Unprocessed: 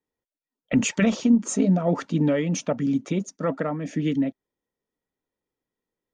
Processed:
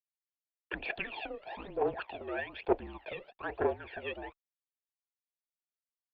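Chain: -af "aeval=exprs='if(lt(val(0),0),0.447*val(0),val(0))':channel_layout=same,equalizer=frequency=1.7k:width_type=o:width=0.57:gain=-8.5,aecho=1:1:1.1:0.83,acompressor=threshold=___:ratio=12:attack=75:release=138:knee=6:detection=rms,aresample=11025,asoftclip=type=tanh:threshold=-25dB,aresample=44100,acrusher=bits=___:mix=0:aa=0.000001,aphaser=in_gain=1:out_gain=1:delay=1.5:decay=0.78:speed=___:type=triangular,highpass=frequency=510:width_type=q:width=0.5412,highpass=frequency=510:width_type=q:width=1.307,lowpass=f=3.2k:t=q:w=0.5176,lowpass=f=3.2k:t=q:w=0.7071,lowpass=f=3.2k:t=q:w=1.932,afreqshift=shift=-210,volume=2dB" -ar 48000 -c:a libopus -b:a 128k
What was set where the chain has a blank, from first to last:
-26dB, 9, 1.1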